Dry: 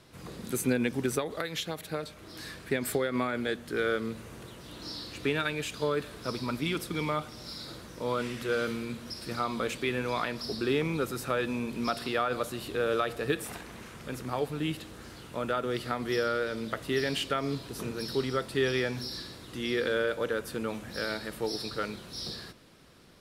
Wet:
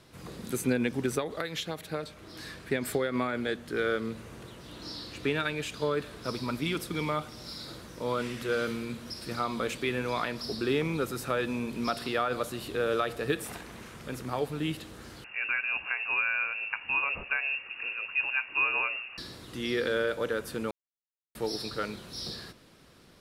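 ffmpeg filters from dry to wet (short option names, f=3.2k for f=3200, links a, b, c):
-filter_complex "[0:a]asettb=1/sr,asplit=3[a][b][c];[a]atrim=end=0.554[d];[b]atrim=start=0.55:end=6.25,asetpts=PTS-STARTPTS,afade=t=in:d=0.004:c=qsin,afade=t=out:st=5.696:d=0.004:c=qsin,highshelf=f=8.5k:g=-5[e];[c]atrim=start=6.246[f];[d][e]acrossfade=d=0.004:c1=hsin:c2=qsin[g];[g][f]acrossfade=d=0.004:c1=qsin:c2=hsin,asettb=1/sr,asplit=3[h][i][j];[h]atrim=end=15.244[k];[i]atrim=start=15.24:end=19.18,asetpts=PTS-STARTPTS,afade=t=in:d=0.004:c=qsin,afade=t=out:st=3.936:d=0.004:c=qsin,lowpass=f=2.5k:t=q:w=0.5098,lowpass=f=2.5k:t=q:w=0.6013,lowpass=f=2.5k:t=q:w=0.9,lowpass=f=2.5k:t=q:w=2.563,afreqshift=-2900[l];[j]atrim=start=19.176[m];[k][l]acrossfade=d=0.004:c1=hsin:c2=qsin[n];[n][m]acrossfade=d=0.004:c1=qsin:c2=hsin,asplit=3[o][p][q];[o]atrim=end=20.71,asetpts=PTS-STARTPTS,afade=t=out:st=20.706:d=0.004:c=hsin[r];[p]atrim=start=20.71:end=21.35,asetpts=PTS-STARTPTS,volume=0[s];[q]atrim=start=21.35,asetpts=PTS-STARTPTS,afade=t=in:d=0.004:c=hsin[t];[r][s][t]concat=n=3:v=0:a=1"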